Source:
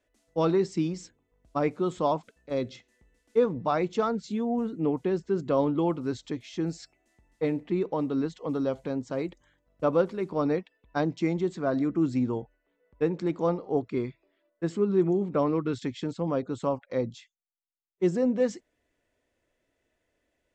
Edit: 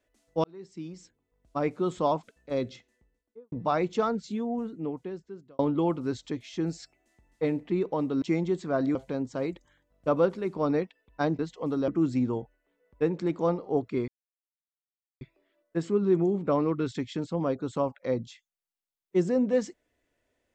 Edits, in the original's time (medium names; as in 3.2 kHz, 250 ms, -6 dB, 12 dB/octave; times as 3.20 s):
0.44–1.90 s: fade in
2.64–3.52 s: studio fade out
4.08–5.59 s: fade out
8.22–8.71 s: swap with 11.15–11.88 s
14.08 s: insert silence 1.13 s